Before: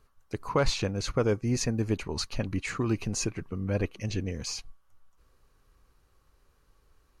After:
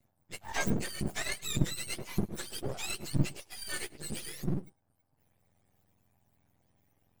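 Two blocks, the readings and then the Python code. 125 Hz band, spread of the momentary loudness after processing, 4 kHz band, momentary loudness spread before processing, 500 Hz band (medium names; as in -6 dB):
-5.0 dB, 7 LU, -3.0 dB, 8 LU, -11.5 dB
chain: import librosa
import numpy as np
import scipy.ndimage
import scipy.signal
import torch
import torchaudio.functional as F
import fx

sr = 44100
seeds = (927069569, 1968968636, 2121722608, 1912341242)

y = fx.octave_mirror(x, sr, pivot_hz=950.0)
y = np.maximum(y, 0.0)
y = y + 10.0 ** (-22.5 / 20.0) * np.pad(y, (int(104 * sr / 1000.0), 0))[:len(y)]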